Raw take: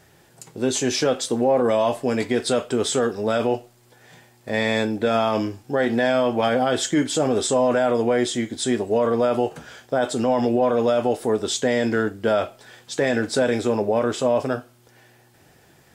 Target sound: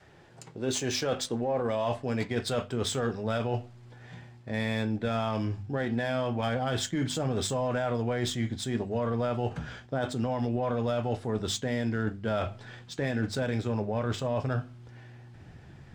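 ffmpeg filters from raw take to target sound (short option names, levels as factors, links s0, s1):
-af "asubboost=boost=4.5:cutoff=200,adynamicsmooth=sensitivity=3.5:basefreq=4200,adynamicequalizer=threshold=0.0224:dfrequency=280:dqfactor=1.3:tfrequency=280:tqfactor=1.3:attack=5:release=100:ratio=0.375:range=3.5:mode=cutabove:tftype=bell,areverse,acompressor=threshold=0.0501:ratio=6,areverse,bandreject=f=50:t=h:w=6,bandreject=f=100:t=h:w=6,bandreject=f=150:t=h:w=6,bandreject=f=200:t=h:w=6,bandreject=f=250:t=h:w=6"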